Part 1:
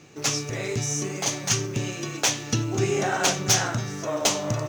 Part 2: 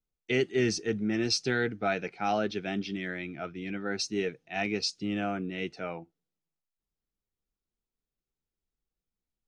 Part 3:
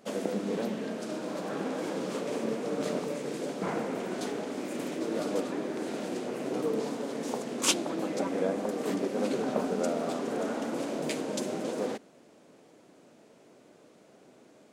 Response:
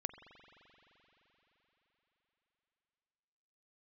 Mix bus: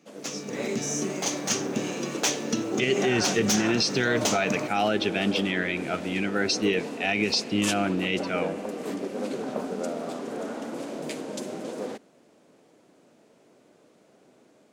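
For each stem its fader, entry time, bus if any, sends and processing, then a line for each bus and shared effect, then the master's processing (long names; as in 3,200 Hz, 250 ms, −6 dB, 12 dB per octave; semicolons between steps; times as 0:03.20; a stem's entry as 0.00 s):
−12.5 dB, 0.00 s, no send, low shelf with overshoot 140 Hz −14 dB, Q 3
−6.0 dB, 2.50 s, send −6 dB, parametric band 3,000 Hz +7 dB 0.81 octaves
−11.5 dB, 0.00 s, no send, no processing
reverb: on, RT60 4.4 s, pre-delay 43 ms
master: automatic gain control gain up to 10 dB; brickwall limiter −14 dBFS, peak gain reduction 9 dB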